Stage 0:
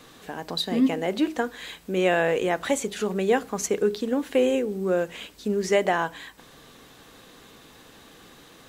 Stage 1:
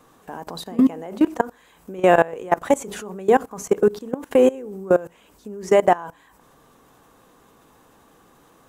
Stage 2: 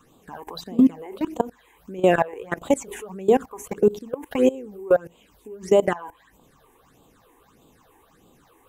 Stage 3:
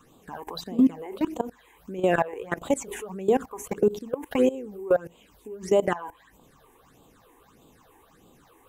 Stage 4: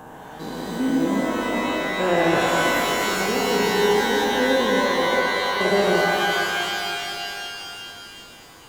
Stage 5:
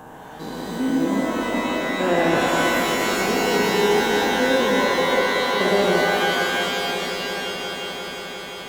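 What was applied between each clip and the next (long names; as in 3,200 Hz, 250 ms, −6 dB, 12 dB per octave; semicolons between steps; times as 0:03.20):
octave-band graphic EQ 1,000/2,000/4,000 Hz +6/−5/−10 dB; output level in coarse steps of 21 dB; level +8.5 dB
all-pass phaser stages 8, 1.6 Hz, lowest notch 170–1,800 Hz
brickwall limiter −11.5 dBFS, peak gain reduction 6.5 dB
spectrum averaged block by block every 400 ms; reverb with rising layers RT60 2.9 s, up +12 semitones, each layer −2 dB, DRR −0.5 dB; level +7 dB
echo that builds up and dies away 176 ms, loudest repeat 5, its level −15.5 dB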